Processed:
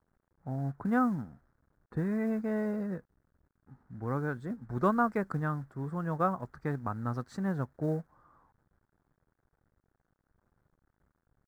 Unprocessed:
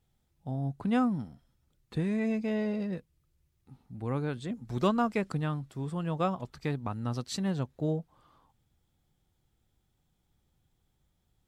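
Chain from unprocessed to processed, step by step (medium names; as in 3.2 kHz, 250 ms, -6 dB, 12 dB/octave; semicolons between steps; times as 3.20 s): companded quantiser 6-bit; resonant high shelf 2.1 kHz -10.5 dB, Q 3; tape noise reduction on one side only decoder only; trim -1.5 dB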